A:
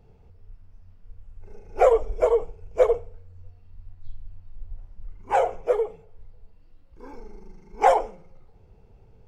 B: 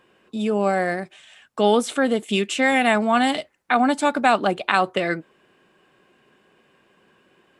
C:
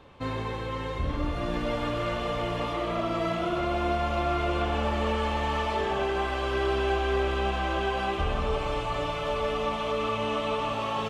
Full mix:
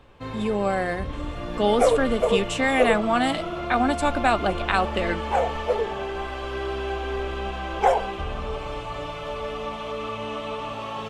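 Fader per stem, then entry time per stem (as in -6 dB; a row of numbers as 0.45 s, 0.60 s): -2.0 dB, -3.5 dB, -2.5 dB; 0.00 s, 0.00 s, 0.00 s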